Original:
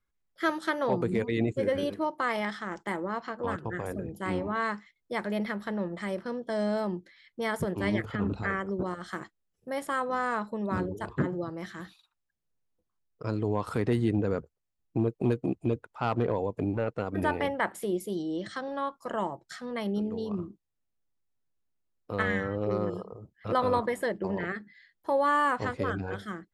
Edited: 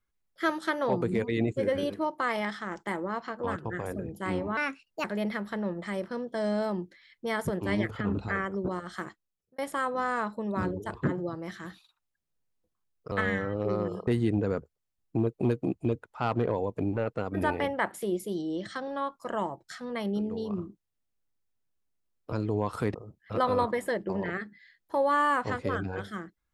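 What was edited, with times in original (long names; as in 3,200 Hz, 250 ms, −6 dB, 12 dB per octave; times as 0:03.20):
0:04.57–0:05.19: play speed 131%
0:09.17–0:09.73: fade out
0:13.26–0:13.88: swap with 0:22.13–0:23.09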